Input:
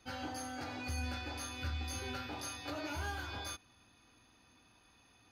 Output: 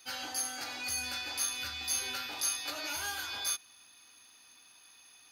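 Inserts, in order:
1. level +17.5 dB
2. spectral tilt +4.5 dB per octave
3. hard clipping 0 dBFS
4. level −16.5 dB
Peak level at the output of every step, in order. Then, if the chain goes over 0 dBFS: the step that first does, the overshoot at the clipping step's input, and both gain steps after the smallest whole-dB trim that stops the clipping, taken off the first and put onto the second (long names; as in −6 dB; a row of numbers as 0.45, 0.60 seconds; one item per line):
−10.0, −2.5, −2.5, −19.0 dBFS
no step passes full scale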